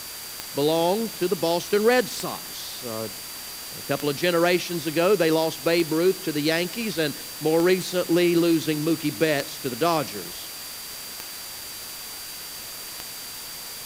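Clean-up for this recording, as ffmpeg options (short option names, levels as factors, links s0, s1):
-af "adeclick=t=4,bandreject=f=4700:w=30,afwtdn=0.016"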